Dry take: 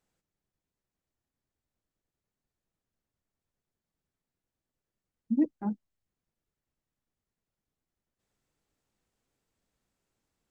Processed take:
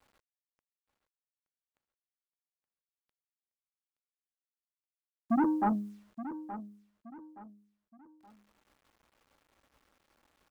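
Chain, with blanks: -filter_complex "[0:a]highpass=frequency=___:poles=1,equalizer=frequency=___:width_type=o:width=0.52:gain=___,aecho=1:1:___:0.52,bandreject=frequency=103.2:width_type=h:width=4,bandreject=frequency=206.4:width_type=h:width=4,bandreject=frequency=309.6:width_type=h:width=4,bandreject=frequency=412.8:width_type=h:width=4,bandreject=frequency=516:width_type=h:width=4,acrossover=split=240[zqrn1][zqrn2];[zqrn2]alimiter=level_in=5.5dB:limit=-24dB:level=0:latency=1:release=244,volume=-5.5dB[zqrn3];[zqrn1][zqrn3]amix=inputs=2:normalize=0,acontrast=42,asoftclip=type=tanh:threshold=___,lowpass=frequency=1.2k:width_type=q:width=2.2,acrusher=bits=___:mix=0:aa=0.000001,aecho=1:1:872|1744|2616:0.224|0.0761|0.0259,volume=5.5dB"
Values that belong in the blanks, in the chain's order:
40, 170, -11.5, 3.6, -30dB, 11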